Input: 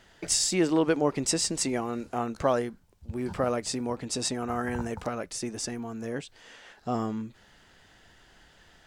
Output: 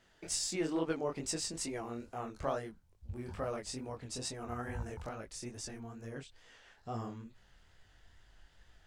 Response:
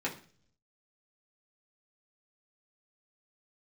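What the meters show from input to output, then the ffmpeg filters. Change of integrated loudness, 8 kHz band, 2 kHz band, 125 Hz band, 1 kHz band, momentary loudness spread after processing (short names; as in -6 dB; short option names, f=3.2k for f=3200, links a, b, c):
-10.5 dB, -10.0 dB, -10.0 dB, -7.5 dB, -10.0 dB, 14 LU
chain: -af "asubboost=boost=4:cutoff=100,flanger=delay=18:depth=7.7:speed=2.3,aeval=exprs='0.224*(cos(1*acos(clip(val(0)/0.224,-1,1)))-cos(1*PI/2))+0.00398*(cos(4*acos(clip(val(0)/0.224,-1,1)))-cos(4*PI/2))':c=same,volume=-7dB"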